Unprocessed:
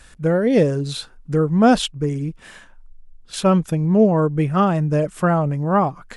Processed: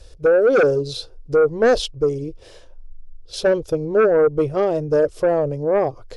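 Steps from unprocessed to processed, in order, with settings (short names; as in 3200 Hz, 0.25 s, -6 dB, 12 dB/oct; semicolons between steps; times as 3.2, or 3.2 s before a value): EQ curve 110 Hz 0 dB, 190 Hz -25 dB, 330 Hz -3 dB, 490 Hz +5 dB, 810 Hz -10 dB, 1700 Hz -20 dB, 5200 Hz -2 dB, 7600 Hz -14 dB, 12000 Hz -12 dB; in parallel at -5 dB: sine folder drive 10 dB, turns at -4.5 dBFS; on the sum: gain -5.5 dB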